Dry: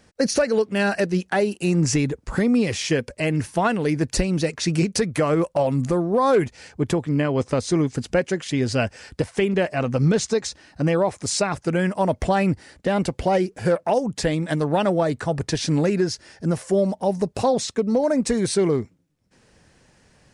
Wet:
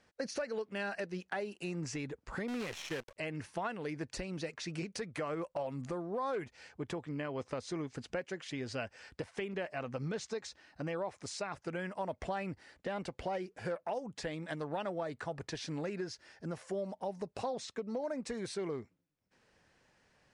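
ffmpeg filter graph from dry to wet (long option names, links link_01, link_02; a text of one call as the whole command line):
ffmpeg -i in.wav -filter_complex "[0:a]asettb=1/sr,asplit=3[link_01][link_02][link_03];[link_01]atrim=end=2.484[link_04];[link_02]atrim=start=2.48:end=3.16,asetpts=PTS-STARTPTS,afade=type=in:duration=0.004:curve=qsin,afade=type=out:start_time=0.676:duration=0.004:curve=qsin,asuperstop=centerf=4800:order=20:qfactor=7.6,acrusher=bits=5:dc=4:mix=0:aa=0.000001[link_05];[link_03]atrim=start=3.156[link_06];[link_04][link_05]acrossfade=duration=0.004:curve1=hsin:curve2=qsin[link_07];[link_07][link_06]acrossfade=duration=0.004:curve1=qsin:curve2=hsin,lowshelf=frequency=430:gain=-10.5,acompressor=threshold=-30dB:ratio=2,aemphasis=mode=reproduction:type=50fm,volume=-8dB" out.wav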